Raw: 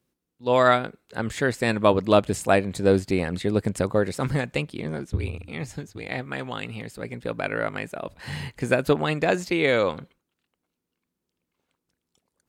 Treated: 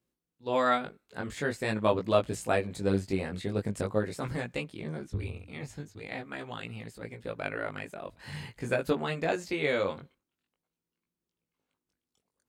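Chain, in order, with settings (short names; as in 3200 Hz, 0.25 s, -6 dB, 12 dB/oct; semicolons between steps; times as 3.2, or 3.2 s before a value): chorus 0.45 Hz, delay 17.5 ms, depth 3.3 ms; gain -4.5 dB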